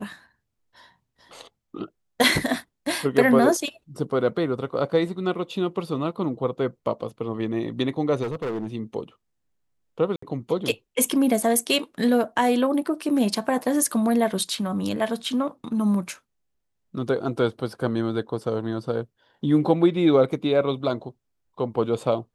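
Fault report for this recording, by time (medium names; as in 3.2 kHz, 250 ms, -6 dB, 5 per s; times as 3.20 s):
8.22–8.74 s: clipped -25 dBFS
10.16–10.22 s: dropout 64 ms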